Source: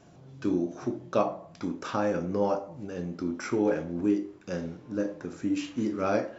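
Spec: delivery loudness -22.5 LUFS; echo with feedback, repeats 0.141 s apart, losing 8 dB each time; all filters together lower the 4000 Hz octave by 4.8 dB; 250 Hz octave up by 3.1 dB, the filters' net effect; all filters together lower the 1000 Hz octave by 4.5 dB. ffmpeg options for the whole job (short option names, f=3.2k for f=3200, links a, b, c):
-af "equalizer=f=250:t=o:g=4.5,equalizer=f=1k:t=o:g=-6.5,equalizer=f=4k:t=o:g=-6.5,aecho=1:1:141|282|423|564|705:0.398|0.159|0.0637|0.0255|0.0102,volume=6dB"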